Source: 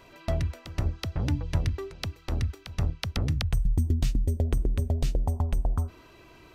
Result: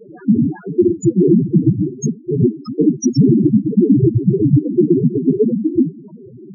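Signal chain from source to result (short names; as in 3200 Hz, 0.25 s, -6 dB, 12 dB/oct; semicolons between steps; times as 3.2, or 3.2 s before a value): noise vocoder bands 3; loudest bins only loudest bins 2; maximiser +30.5 dB; gain -2.5 dB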